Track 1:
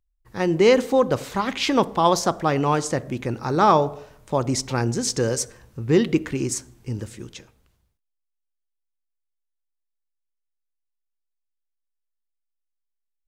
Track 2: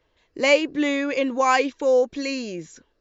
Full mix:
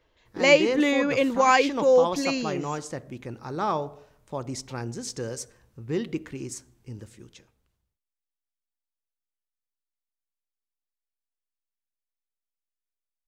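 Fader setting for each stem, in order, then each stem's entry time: -10.5 dB, 0.0 dB; 0.00 s, 0.00 s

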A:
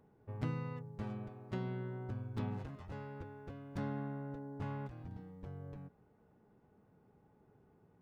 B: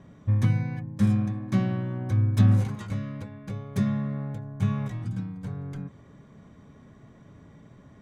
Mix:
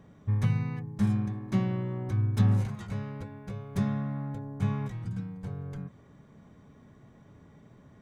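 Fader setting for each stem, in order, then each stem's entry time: +1.5 dB, -4.0 dB; 0.00 s, 0.00 s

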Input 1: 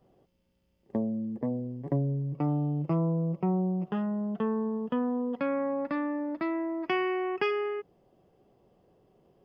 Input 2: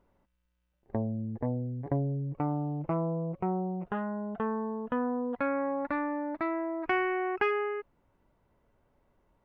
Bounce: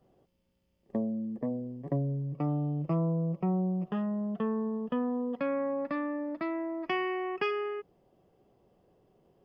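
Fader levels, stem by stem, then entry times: -2.0 dB, -15.5 dB; 0.00 s, 0.00 s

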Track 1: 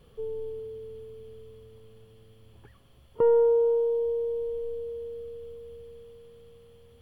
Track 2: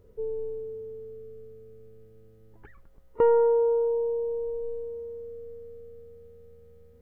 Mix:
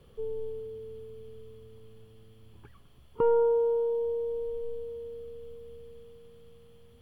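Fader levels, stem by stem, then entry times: -1.5 dB, -7.0 dB; 0.00 s, 0.00 s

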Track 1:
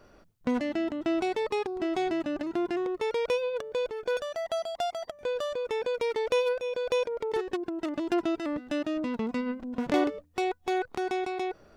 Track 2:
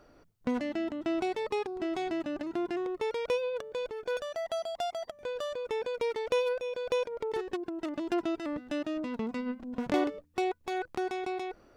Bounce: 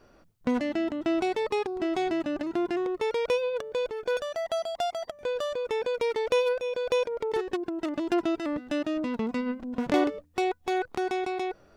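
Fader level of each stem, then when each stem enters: -2.0 dB, -5.5 dB; 0.00 s, 0.00 s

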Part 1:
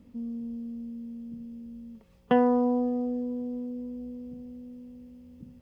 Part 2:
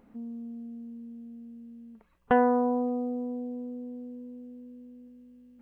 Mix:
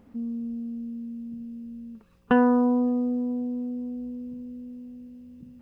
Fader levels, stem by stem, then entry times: -2.0 dB, +1.0 dB; 0.00 s, 0.00 s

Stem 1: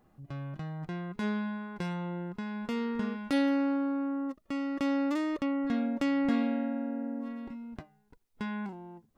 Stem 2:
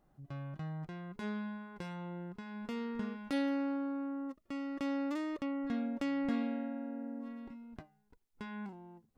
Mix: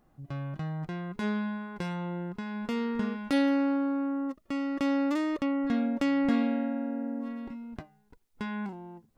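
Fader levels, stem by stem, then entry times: -4.5 dB, +2.5 dB; 0.00 s, 0.00 s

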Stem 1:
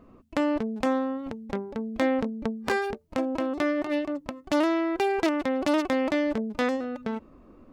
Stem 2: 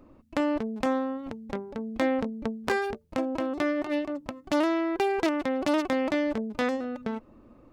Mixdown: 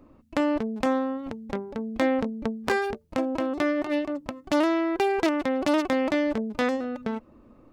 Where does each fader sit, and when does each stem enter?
-10.5 dB, -0.5 dB; 0.00 s, 0.00 s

